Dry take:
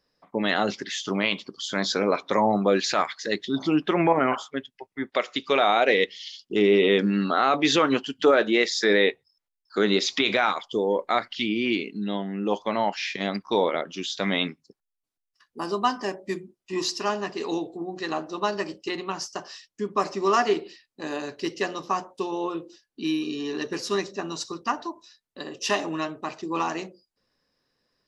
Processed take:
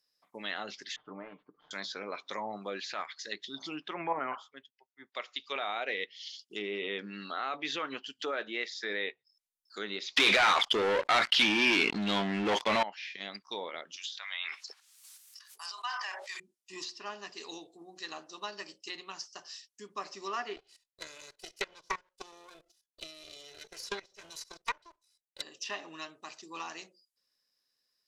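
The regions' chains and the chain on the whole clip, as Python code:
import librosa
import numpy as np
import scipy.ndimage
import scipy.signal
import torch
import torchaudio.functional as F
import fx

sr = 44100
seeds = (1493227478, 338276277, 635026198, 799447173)

y = fx.chain(x, sr, fx.cvsd(bps=64000),
    fx.lowpass(hz=1300.0, slope=24),
    fx.comb(ms=6.7, depth=0.49), at=(0.96, 1.71))
y = fx.chain(y, sr, fx.lowpass(hz=2700.0, slope=6),
    fx.peak_eq(hz=990.0, db=4.5, octaves=0.79),
    fx.band_widen(depth_pct=70), at=(3.88, 5.56))
y = fx.chain(y, sr, fx.high_shelf(hz=3300.0, db=6.0),
    fx.leveller(passes=5),
    fx.env_flatten(amount_pct=50), at=(10.16, 12.83))
y = fx.chain(y, sr, fx.highpass(hz=900.0, slope=24),
    fx.sustainer(db_per_s=24.0), at=(13.96, 16.4))
y = fx.chain(y, sr, fx.lower_of_two(delay_ms=2.0),
    fx.level_steps(step_db=13),
    fx.transient(attack_db=11, sustain_db=-5), at=(20.56, 25.42))
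y = F.preemphasis(torch.from_numpy(y), 0.9).numpy()
y = fx.env_lowpass_down(y, sr, base_hz=2500.0, full_db=-33.5)
y = fx.low_shelf(y, sr, hz=250.0, db=-5.5)
y = y * librosa.db_to_amplitude(1.5)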